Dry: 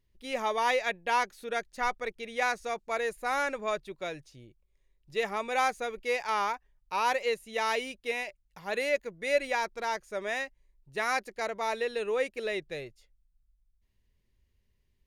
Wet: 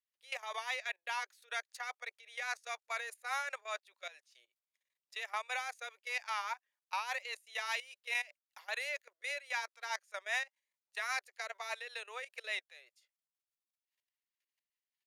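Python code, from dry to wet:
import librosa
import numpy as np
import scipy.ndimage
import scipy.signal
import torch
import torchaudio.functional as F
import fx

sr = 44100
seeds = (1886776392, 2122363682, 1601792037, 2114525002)

y = fx.level_steps(x, sr, step_db=17)
y = fx.rotary(y, sr, hz=5.0)
y = scipy.signal.sosfilt(scipy.signal.bessel(6, 1100.0, 'highpass', norm='mag', fs=sr, output='sos'), y)
y = y * 10.0 ** (4.0 / 20.0)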